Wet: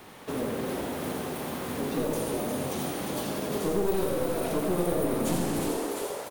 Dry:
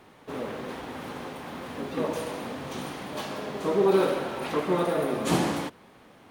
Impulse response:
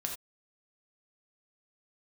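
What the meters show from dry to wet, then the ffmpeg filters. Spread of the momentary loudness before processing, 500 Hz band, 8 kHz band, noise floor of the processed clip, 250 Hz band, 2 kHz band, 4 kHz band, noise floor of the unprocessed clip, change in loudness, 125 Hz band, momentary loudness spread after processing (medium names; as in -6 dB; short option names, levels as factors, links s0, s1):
14 LU, -1.5 dB, +5.5 dB, -41 dBFS, +0.5 dB, -3.0 dB, -1.5 dB, -54 dBFS, -1.0 dB, +1.0 dB, 6 LU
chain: -filter_complex "[0:a]asplit=2[s0][s1];[s1]asplit=5[s2][s3][s4][s5][s6];[s2]adelay=350,afreqshift=120,volume=0.422[s7];[s3]adelay=700,afreqshift=240,volume=0.197[s8];[s4]adelay=1050,afreqshift=360,volume=0.0933[s9];[s5]adelay=1400,afreqshift=480,volume=0.0437[s10];[s6]adelay=1750,afreqshift=600,volume=0.0207[s11];[s7][s8][s9][s10][s11]amix=inputs=5:normalize=0[s12];[s0][s12]amix=inputs=2:normalize=0,aeval=exprs='clip(val(0),-1,0.0376)':c=same,acrossover=split=530|7800[s13][s14][s15];[s13]acompressor=threshold=0.0316:ratio=4[s16];[s14]acompressor=threshold=0.00562:ratio=4[s17];[s15]acompressor=threshold=0.002:ratio=4[s18];[s16][s17][s18]amix=inputs=3:normalize=0,asplit=2[s19][s20];[s20]aecho=0:1:86:0.473[s21];[s19][s21]amix=inputs=2:normalize=0,crystalizer=i=1.5:c=0,volume=1.68"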